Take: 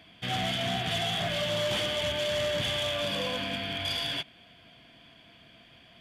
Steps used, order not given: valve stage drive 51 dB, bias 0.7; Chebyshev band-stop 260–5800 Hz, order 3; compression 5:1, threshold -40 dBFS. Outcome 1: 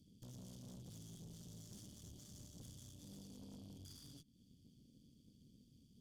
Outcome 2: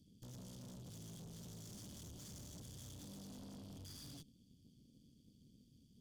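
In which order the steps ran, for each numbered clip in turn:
compression > Chebyshev band-stop > valve stage; Chebyshev band-stop > compression > valve stage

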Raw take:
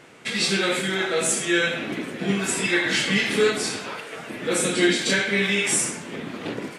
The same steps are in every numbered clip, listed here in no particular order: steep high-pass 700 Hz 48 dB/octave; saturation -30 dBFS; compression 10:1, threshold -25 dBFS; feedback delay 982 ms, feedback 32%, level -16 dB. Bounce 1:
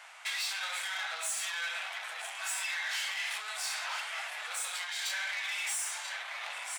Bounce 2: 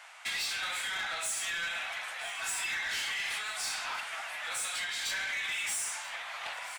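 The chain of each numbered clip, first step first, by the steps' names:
feedback delay > compression > saturation > steep high-pass; compression > steep high-pass > saturation > feedback delay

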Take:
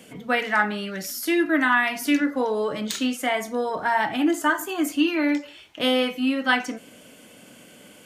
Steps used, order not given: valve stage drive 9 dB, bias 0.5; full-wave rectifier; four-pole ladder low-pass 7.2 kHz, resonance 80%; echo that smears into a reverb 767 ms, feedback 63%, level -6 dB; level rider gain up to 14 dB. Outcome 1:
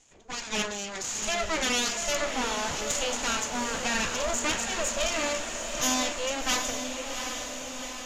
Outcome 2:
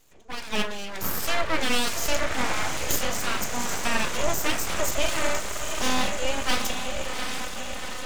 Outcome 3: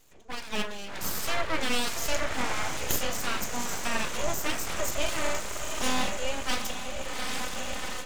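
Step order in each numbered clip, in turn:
full-wave rectifier > four-pole ladder low-pass > level rider > valve stage > echo that smears into a reverb; four-pole ladder low-pass > level rider > echo that smears into a reverb > valve stage > full-wave rectifier; valve stage > echo that smears into a reverb > level rider > four-pole ladder low-pass > full-wave rectifier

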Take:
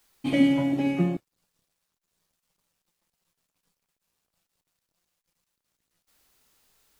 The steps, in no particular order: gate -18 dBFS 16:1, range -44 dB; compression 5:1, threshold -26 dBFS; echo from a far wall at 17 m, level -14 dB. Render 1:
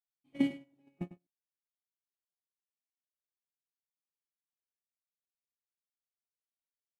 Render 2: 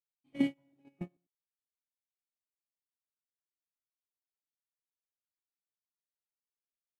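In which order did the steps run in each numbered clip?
gate > compression > echo from a far wall; echo from a far wall > gate > compression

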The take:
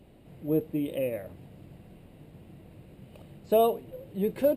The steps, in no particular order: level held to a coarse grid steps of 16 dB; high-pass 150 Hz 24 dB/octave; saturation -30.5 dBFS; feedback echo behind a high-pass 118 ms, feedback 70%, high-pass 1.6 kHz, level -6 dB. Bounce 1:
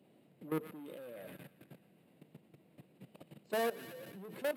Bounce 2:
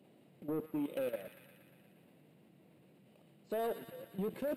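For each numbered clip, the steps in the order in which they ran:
saturation > feedback echo behind a high-pass > level held to a coarse grid > high-pass; high-pass > level held to a coarse grid > saturation > feedback echo behind a high-pass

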